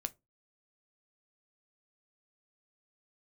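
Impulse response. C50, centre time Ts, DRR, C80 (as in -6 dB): 25.5 dB, 2 ms, 10.5 dB, 34.0 dB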